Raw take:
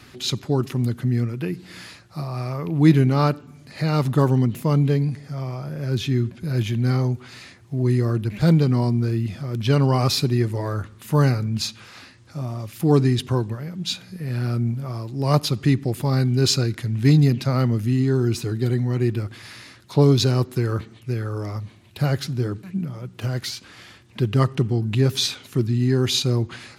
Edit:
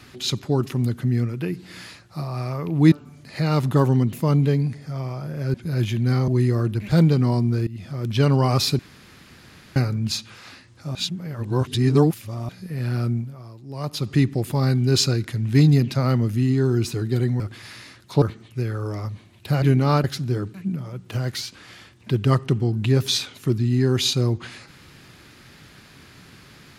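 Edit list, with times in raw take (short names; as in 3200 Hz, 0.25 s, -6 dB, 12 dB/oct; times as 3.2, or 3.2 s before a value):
2.92–3.34 move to 22.13
5.96–6.32 cut
7.06–7.78 cut
9.17–9.47 fade in, from -18.5 dB
10.29–11.26 room tone
12.45–13.99 reverse
14.59–15.63 dip -11 dB, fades 0.27 s
18.9–19.2 cut
20.02–20.73 cut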